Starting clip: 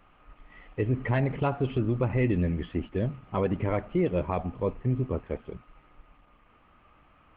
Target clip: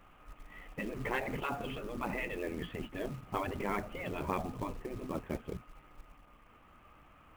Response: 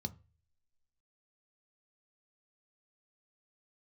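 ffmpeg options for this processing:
-af "afftfilt=real='re*lt(hypot(re,im),0.158)':imag='im*lt(hypot(re,im),0.158)':win_size=1024:overlap=0.75,acrusher=bits=5:mode=log:mix=0:aa=0.000001"

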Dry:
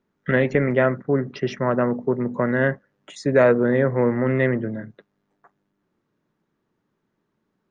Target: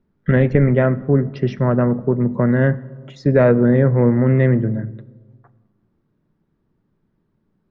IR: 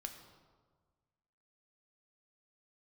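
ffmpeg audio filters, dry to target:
-filter_complex "[0:a]lowpass=f=5.2k:t=q:w=1.8,aemphasis=mode=reproduction:type=riaa,asplit=2[a][b];[1:a]atrim=start_sample=2205[c];[b][c]afir=irnorm=-1:irlink=0,volume=-6.5dB[d];[a][d]amix=inputs=2:normalize=0,volume=-3dB"

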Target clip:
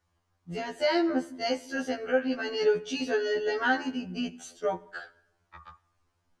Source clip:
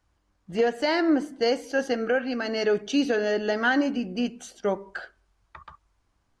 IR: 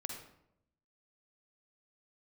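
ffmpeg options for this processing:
-filter_complex "[0:a]asplit=2[a][b];[b]lowshelf=f=370:g=-8.5[c];[1:a]atrim=start_sample=2205,asetrate=31752,aresample=44100[d];[c][d]afir=irnorm=-1:irlink=0,volume=-17.5dB[e];[a][e]amix=inputs=2:normalize=0,afftfilt=real='re*2*eq(mod(b,4),0)':imag='im*2*eq(mod(b,4),0)':win_size=2048:overlap=0.75,volume=-1.5dB"

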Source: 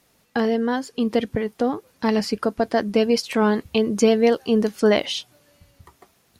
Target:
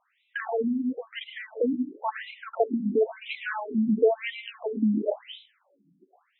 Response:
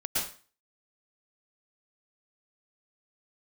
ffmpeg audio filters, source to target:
-filter_complex "[0:a]asplit=2[a][b];[1:a]atrim=start_sample=2205[c];[b][c]afir=irnorm=-1:irlink=0,volume=-11dB[d];[a][d]amix=inputs=2:normalize=0,afftfilt=real='re*between(b*sr/1024,210*pow(2900/210,0.5+0.5*sin(2*PI*0.97*pts/sr))/1.41,210*pow(2900/210,0.5+0.5*sin(2*PI*0.97*pts/sr))*1.41)':imag='im*between(b*sr/1024,210*pow(2900/210,0.5+0.5*sin(2*PI*0.97*pts/sr))/1.41,210*pow(2900/210,0.5+0.5*sin(2*PI*0.97*pts/sr))*1.41)':win_size=1024:overlap=0.75,volume=-2.5dB"

